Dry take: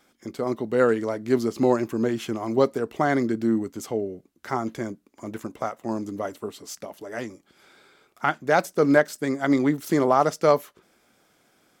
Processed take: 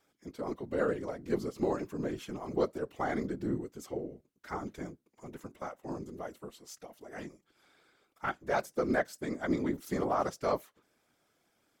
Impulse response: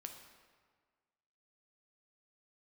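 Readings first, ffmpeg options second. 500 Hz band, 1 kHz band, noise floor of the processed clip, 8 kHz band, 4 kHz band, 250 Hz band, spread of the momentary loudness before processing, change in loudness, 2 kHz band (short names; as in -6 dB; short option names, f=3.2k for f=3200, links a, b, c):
-11.0 dB, -10.5 dB, -76 dBFS, -11.0 dB, -11.0 dB, -11.5 dB, 16 LU, -11.0 dB, -10.5 dB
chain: -af "afftfilt=real='hypot(re,im)*cos(2*PI*random(0))':imag='hypot(re,im)*sin(2*PI*random(1))':win_size=512:overlap=0.75,volume=-5dB"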